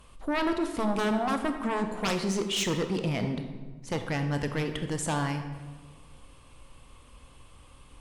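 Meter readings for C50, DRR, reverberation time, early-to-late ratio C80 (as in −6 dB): 8.0 dB, 6.5 dB, 1.4 s, 9.5 dB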